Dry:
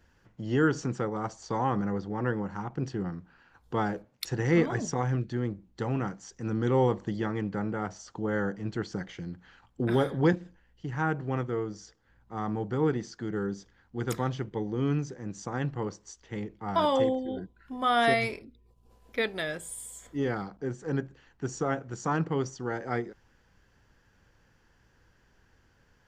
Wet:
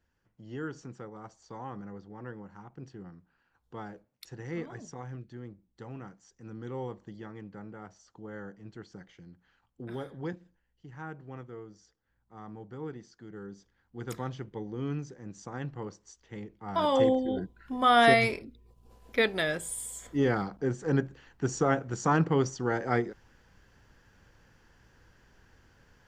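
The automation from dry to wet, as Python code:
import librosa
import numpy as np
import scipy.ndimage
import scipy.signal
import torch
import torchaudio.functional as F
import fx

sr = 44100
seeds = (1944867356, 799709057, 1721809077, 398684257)

y = fx.gain(x, sr, db=fx.line((13.27, -13.0), (14.17, -6.0), (16.62, -6.0), (17.12, 3.5)))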